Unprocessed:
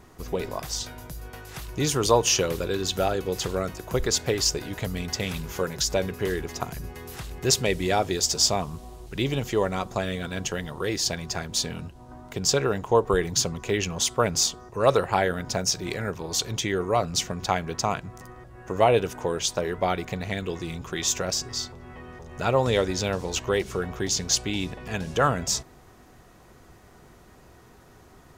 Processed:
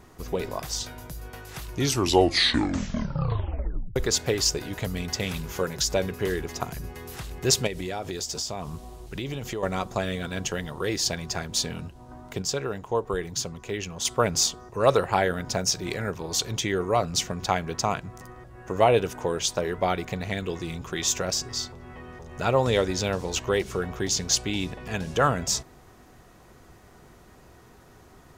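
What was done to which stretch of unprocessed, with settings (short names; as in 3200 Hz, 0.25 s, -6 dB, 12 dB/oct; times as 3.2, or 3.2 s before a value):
1.71 tape stop 2.25 s
7.67–9.63 compressor, threshold -28 dBFS
12.42–14.05 gain -6 dB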